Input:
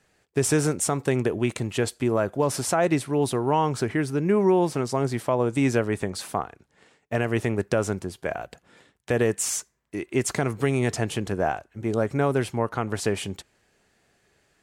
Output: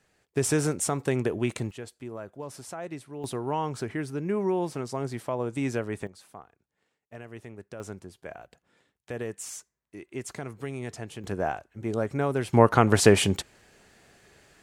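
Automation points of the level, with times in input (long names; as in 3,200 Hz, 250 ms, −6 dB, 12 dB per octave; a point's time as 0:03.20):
−3 dB
from 0:01.71 −15.5 dB
from 0:03.24 −7 dB
from 0:06.07 −18.5 dB
from 0:07.80 −12 dB
from 0:11.24 −4 dB
from 0:12.53 +8 dB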